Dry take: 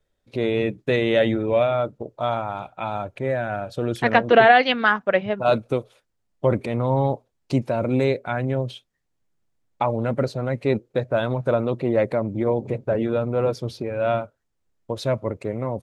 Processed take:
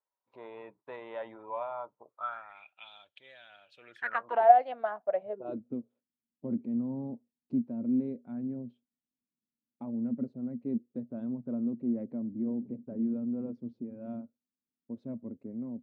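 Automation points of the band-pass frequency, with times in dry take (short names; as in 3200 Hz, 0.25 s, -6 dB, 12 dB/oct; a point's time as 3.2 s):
band-pass, Q 8.9
2 s 970 Hz
2.89 s 3300 Hz
3.61 s 3300 Hz
4.53 s 670 Hz
5.21 s 670 Hz
5.62 s 240 Hz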